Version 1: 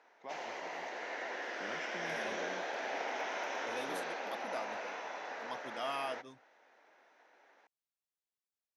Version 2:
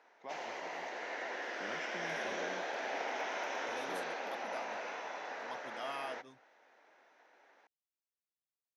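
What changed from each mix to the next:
second voice -4.0 dB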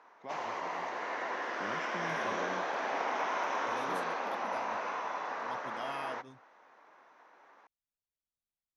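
background: add bell 1100 Hz +13 dB 0.56 oct; master: remove HPF 400 Hz 6 dB/oct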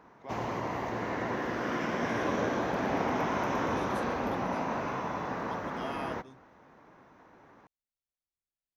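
background: remove BPF 650–7500 Hz

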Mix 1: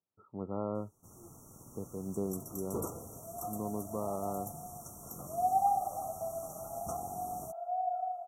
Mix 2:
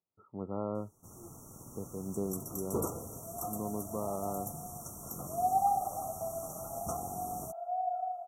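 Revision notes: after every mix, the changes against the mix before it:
first sound +3.5 dB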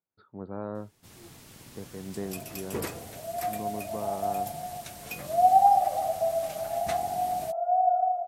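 second sound: add bell 590 Hz +12.5 dB 1.5 oct; master: remove brick-wall FIR band-stop 1400–5500 Hz

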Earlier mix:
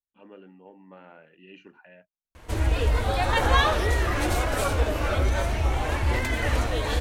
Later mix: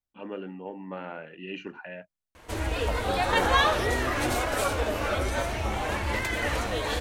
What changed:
first voice +11.0 dB; second voice: entry -2.25 s; background: add low shelf 150 Hz -10 dB

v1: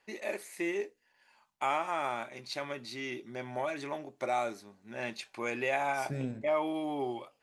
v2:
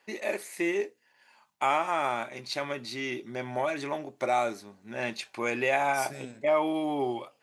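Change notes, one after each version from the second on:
first voice +5.0 dB; second voice: add tilt +3.5 dB/oct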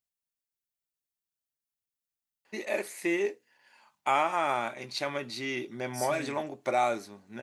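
first voice: entry +2.45 s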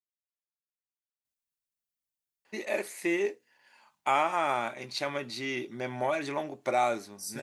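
second voice: entry +1.25 s

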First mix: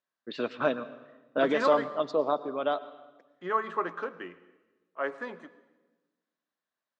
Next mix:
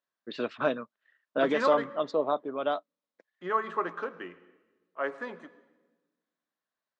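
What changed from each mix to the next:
first voice: send off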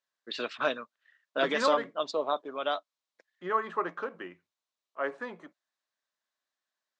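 first voice: add tilt +3.5 dB/oct; reverb: off

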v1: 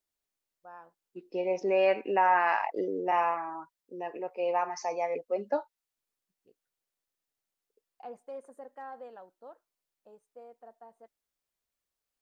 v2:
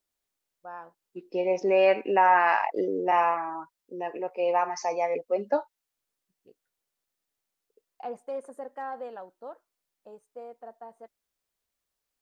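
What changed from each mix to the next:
first voice +7.5 dB; second voice +4.0 dB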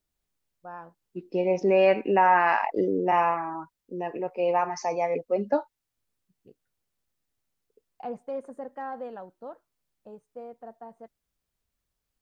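first voice: add air absorption 52 m; master: add tone controls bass +13 dB, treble -1 dB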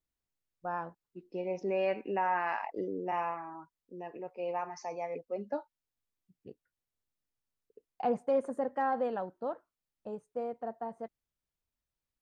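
first voice +5.0 dB; second voice -11.0 dB

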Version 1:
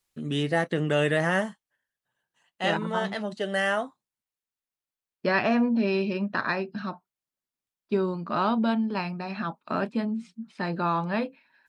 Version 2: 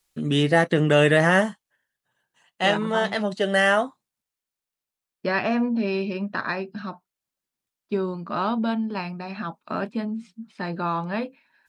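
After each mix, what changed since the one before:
first voice +6.5 dB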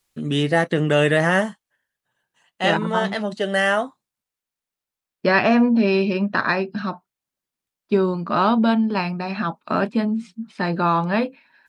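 second voice +7.0 dB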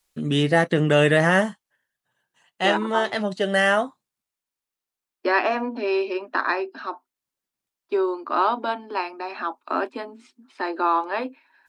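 second voice: add rippled Chebyshev high-pass 250 Hz, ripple 6 dB

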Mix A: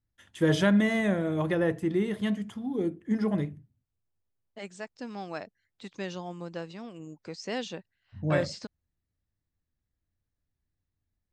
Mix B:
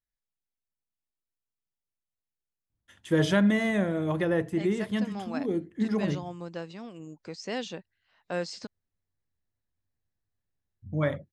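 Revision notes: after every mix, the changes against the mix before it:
first voice: entry +2.70 s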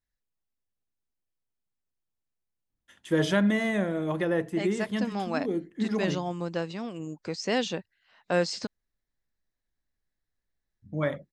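first voice: add bell 93 Hz -12.5 dB 0.79 oct; second voice +6.5 dB

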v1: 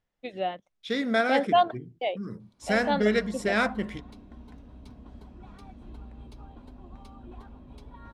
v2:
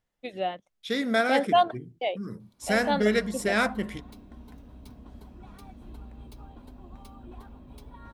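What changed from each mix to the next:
master: remove air absorption 56 m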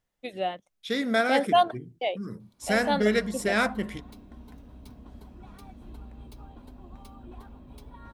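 first voice: remove air absorption 54 m

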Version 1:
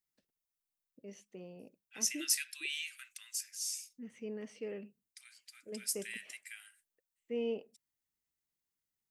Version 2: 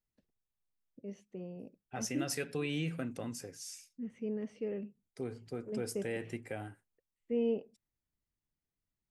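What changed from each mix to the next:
second voice: remove inverse Chebyshev high-pass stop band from 420 Hz, stop band 70 dB; master: add tilt -3 dB/oct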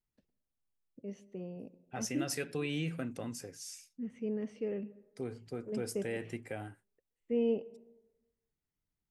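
reverb: on, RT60 1.1 s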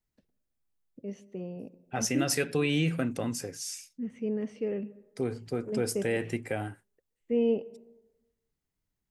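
first voice +4.5 dB; second voice +8.5 dB

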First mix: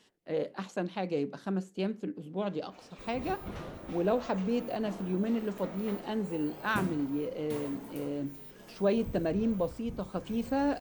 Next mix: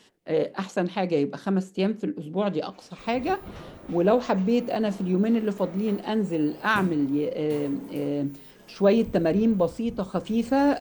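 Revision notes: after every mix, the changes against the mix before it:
speech +8.0 dB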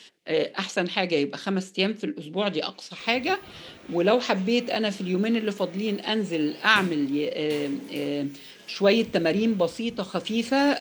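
first sound -8.0 dB; master: add weighting filter D

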